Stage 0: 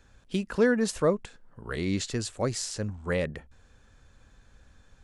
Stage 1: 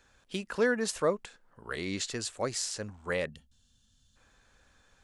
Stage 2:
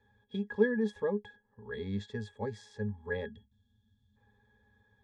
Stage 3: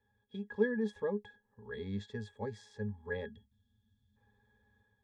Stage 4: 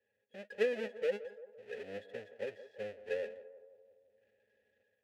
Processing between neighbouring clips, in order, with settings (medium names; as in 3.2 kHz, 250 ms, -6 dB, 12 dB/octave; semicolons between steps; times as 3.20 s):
time-frequency box 3.29–4.16 s, 260–2700 Hz -19 dB; bass shelf 310 Hz -12 dB
pitch-class resonator G#, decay 0.1 s; trim +7.5 dB
level rider gain up to 5.5 dB; trim -8.5 dB
square wave that keeps the level; vowel filter e; band-passed feedback delay 170 ms, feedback 59%, band-pass 620 Hz, level -13 dB; trim +5.5 dB